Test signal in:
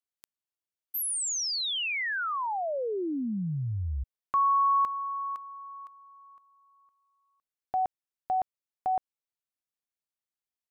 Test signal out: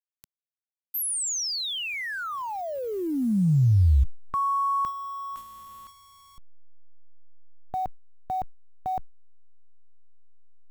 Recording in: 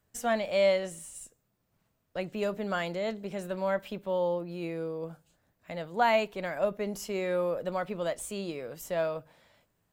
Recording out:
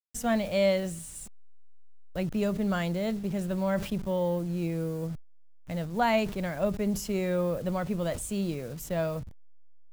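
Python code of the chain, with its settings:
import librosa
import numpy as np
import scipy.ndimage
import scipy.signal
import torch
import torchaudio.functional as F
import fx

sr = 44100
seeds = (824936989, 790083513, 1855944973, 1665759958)

y = fx.delta_hold(x, sr, step_db=-47.5)
y = fx.bass_treble(y, sr, bass_db=15, treble_db=4)
y = fx.sustainer(y, sr, db_per_s=110.0)
y = y * librosa.db_to_amplitude(-1.5)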